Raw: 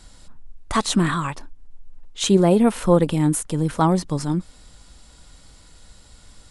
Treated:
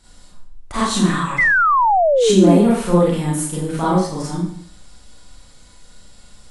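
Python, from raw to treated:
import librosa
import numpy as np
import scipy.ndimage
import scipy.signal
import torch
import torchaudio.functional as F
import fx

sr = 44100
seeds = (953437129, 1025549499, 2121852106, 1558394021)

y = fx.rev_schroeder(x, sr, rt60_s=0.57, comb_ms=31, drr_db=-8.5)
y = fx.spec_paint(y, sr, seeds[0], shape='fall', start_s=1.38, length_s=1.2, low_hz=260.0, high_hz=2100.0, level_db=-7.0)
y = y * 10.0 ** (-7.0 / 20.0)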